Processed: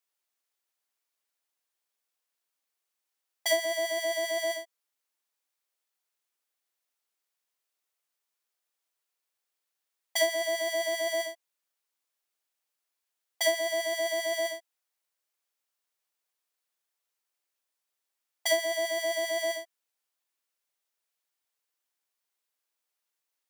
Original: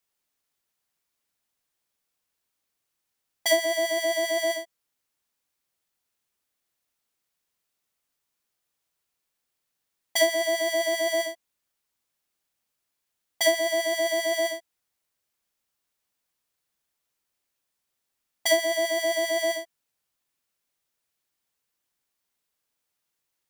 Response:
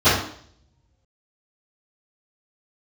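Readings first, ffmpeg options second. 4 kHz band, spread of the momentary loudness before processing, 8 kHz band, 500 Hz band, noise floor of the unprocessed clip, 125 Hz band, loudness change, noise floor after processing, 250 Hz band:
-4.0 dB, 7 LU, -4.0 dB, -4.5 dB, -81 dBFS, n/a, -4.5 dB, -85 dBFS, -9.5 dB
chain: -af "highpass=410,volume=-4dB"

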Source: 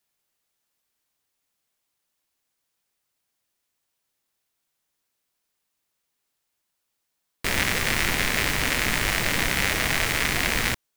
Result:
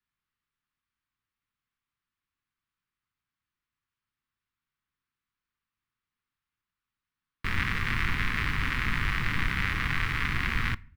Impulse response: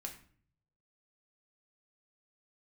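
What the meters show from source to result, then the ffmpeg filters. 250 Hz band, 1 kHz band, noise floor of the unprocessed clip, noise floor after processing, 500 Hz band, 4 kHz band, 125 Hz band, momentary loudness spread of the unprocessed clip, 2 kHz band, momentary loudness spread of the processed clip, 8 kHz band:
-5.0 dB, -4.5 dB, -79 dBFS, under -85 dBFS, -15.5 dB, -10.5 dB, 0.0 dB, 1 LU, -5.0 dB, 1 LU, -22.0 dB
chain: -filter_complex "[0:a]firequalizer=gain_entry='entry(100,0);entry(610,-24);entry(1100,-3);entry(6800,-24)':delay=0.05:min_phase=1,asplit=2[a][b];[1:a]atrim=start_sample=2205[c];[b][c]afir=irnorm=-1:irlink=0,volume=-12dB[d];[a][d]amix=inputs=2:normalize=0"

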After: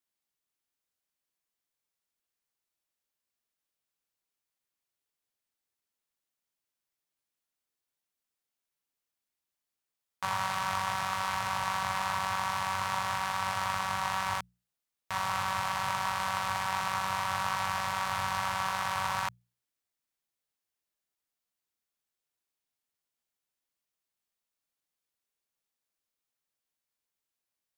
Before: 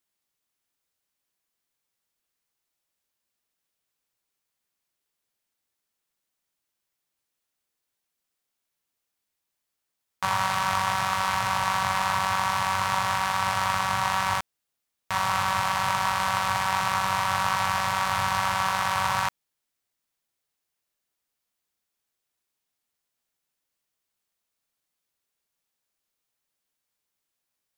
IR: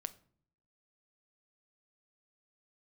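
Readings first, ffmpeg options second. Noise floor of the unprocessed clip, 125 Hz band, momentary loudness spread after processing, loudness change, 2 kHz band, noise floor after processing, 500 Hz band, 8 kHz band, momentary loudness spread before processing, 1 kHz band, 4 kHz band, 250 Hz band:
-83 dBFS, -7.0 dB, 2 LU, -6.5 dB, -6.5 dB, under -85 dBFS, -6.5 dB, -6.5 dB, 2 LU, -6.5 dB, -6.5 dB, -7.0 dB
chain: -af "bandreject=f=60:t=h:w=6,bandreject=f=120:t=h:w=6,bandreject=f=180:t=h:w=6,volume=-6.5dB"

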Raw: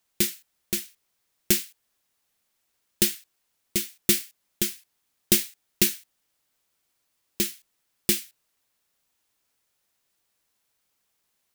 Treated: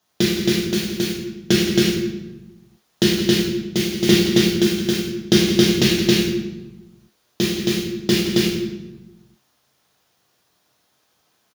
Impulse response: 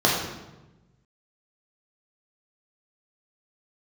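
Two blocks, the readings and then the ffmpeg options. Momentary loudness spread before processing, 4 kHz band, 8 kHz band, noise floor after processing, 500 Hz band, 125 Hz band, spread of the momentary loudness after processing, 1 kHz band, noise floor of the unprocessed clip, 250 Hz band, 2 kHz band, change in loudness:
18 LU, +10.5 dB, +0.5 dB, -66 dBFS, +17.0 dB, +18.0 dB, 11 LU, +15.5 dB, -75 dBFS, +17.0 dB, +11.0 dB, +6.0 dB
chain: -filter_complex "[0:a]acrossover=split=5400[a][b];[b]acompressor=threshold=-32dB:ratio=4:attack=1:release=60[c];[a][c]amix=inputs=2:normalize=0,aecho=1:1:169.1|271.1:0.251|0.891[d];[1:a]atrim=start_sample=2205[e];[d][e]afir=irnorm=-1:irlink=0,volume=-7dB"

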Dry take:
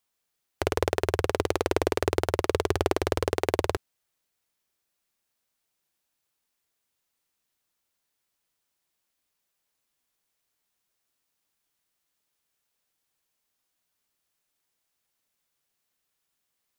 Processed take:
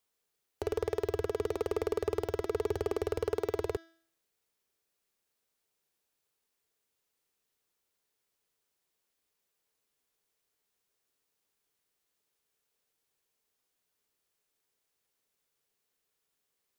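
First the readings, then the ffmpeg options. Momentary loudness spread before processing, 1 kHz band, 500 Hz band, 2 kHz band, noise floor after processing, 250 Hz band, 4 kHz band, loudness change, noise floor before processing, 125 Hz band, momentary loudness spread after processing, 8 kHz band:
3 LU, -11.5 dB, -5.0 dB, -13.5 dB, -83 dBFS, -8.5 dB, -13.5 dB, -6.5 dB, -80 dBFS, -9.5 dB, 3 LU, -13.5 dB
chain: -af "equalizer=f=430:t=o:w=0.42:g=8.5,bandreject=f=329.5:t=h:w=4,bandreject=f=659:t=h:w=4,bandreject=f=988.5:t=h:w=4,bandreject=f=1.318k:t=h:w=4,bandreject=f=1.6475k:t=h:w=4,bandreject=f=1.977k:t=h:w=4,bandreject=f=2.3065k:t=h:w=4,bandreject=f=2.636k:t=h:w=4,bandreject=f=2.9655k:t=h:w=4,bandreject=f=3.295k:t=h:w=4,bandreject=f=3.6245k:t=h:w=4,bandreject=f=3.954k:t=h:w=4,bandreject=f=4.2835k:t=h:w=4,bandreject=f=4.613k:t=h:w=4,bandreject=f=4.9425k:t=h:w=4,bandreject=f=5.272k:t=h:w=4,bandreject=f=5.6015k:t=h:w=4,bandreject=f=5.931k:t=h:w=4,bandreject=f=6.2605k:t=h:w=4,bandreject=f=6.59k:t=h:w=4,alimiter=limit=-14.5dB:level=0:latency=1:release=46,asoftclip=type=hard:threshold=-20.5dB,volume=-2.5dB"

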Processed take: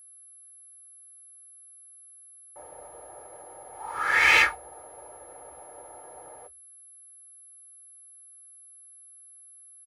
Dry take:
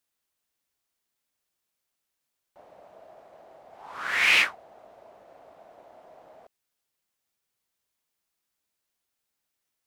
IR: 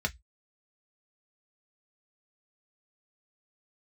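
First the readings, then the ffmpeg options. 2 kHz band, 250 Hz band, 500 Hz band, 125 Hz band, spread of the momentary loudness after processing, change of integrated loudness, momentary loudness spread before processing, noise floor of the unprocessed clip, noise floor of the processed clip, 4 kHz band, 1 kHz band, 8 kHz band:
+2.5 dB, +3.0 dB, +4.5 dB, n/a, 15 LU, +1.5 dB, 12 LU, -83 dBFS, -52 dBFS, -2.5 dB, +6.5 dB, +4.5 dB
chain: -filter_complex "[0:a]aecho=1:1:2.3:0.8,aeval=exprs='val(0)+0.00501*sin(2*PI*11000*n/s)':c=same,asplit=2[a][b];[1:a]atrim=start_sample=2205,asetrate=41013,aresample=44100[c];[b][c]afir=irnorm=-1:irlink=0,volume=-7dB[d];[a][d]amix=inputs=2:normalize=0"

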